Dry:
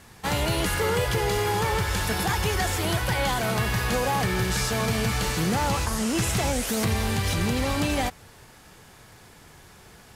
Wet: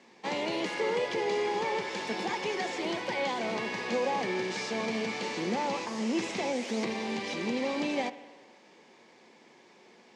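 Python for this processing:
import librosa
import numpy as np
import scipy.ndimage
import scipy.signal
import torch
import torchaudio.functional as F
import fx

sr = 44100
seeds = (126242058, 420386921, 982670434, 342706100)

y = fx.cabinet(x, sr, low_hz=210.0, low_slope=24, high_hz=6200.0, hz=(230.0, 360.0, 530.0, 930.0, 1400.0, 2200.0), db=(6, 7, 6, 4, -8, 6))
y = fx.rev_spring(y, sr, rt60_s=1.4, pass_ms=(58,), chirp_ms=50, drr_db=14.0)
y = y * librosa.db_to_amplitude(-8.0)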